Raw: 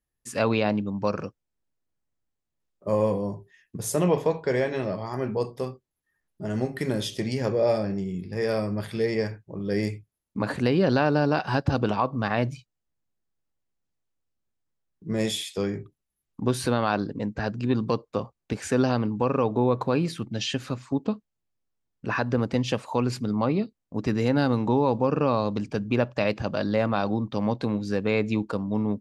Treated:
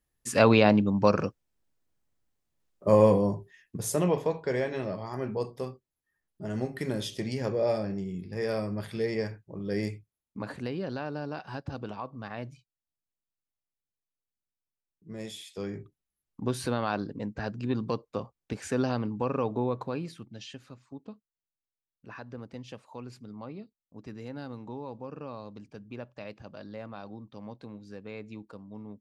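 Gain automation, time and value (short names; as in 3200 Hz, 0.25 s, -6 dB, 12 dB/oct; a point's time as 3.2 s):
3.17 s +4 dB
4.19 s -4.5 dB
9.86 s -4.5 dB
10.9 s -13.5 dB
15.34 s -13.5 dB
15.8 s -5.5 dB
19.52 s -5.5 dB
20.69 s -17.5 dB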